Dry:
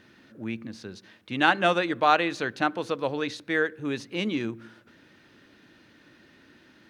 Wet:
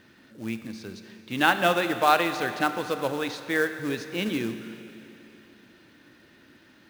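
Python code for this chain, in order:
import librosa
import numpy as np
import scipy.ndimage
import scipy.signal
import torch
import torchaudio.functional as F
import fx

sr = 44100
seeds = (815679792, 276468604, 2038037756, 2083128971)

y = fx.quant_float(x, sr, bits=2)
y = fx.rev_schroeder(y, sr, rt60_s=3.1, comb_ms=28, drr_db=9.0)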